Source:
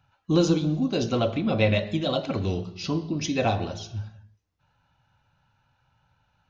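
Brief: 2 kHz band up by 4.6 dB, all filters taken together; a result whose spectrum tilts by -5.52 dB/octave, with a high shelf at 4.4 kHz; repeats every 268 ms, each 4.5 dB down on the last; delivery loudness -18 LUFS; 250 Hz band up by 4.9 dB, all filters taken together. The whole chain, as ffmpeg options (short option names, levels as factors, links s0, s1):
-af "equalizer=f=250:t=o:g=6.5,equalizer=f=2000:t=o:g=5,highshelf=f=4400:g=4,aecho=1:1:268|536|804|1072|1340|1608|1876|2144|2412:0.596|0.357|0.214|0.129|0.0772|0.0463|0.0278|0.0167|0.01,volume=1.41"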